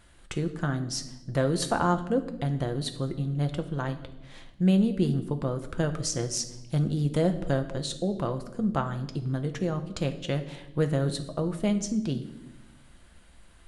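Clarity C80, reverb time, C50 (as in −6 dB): 15.0 dB, 0.95 s, 12.0 dB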